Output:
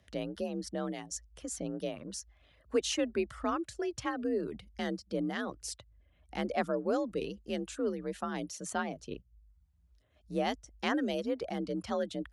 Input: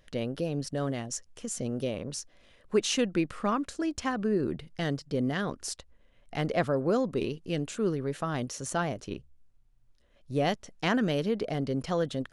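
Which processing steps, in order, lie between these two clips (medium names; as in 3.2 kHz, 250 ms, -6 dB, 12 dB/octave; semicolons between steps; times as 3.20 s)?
reverb removal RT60 0.59 s; frequency shift +48 Hz; trim -4 dB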